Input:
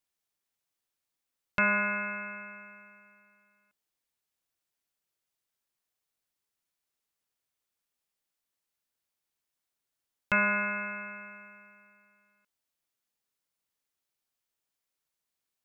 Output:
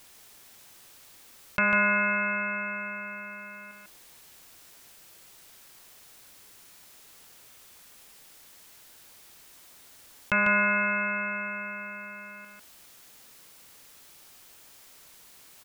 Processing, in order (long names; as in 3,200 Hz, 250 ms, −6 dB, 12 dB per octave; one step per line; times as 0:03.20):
on a send: single-tap delay 147 ms −4.5 dB
on the sum: envelope flattener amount 50%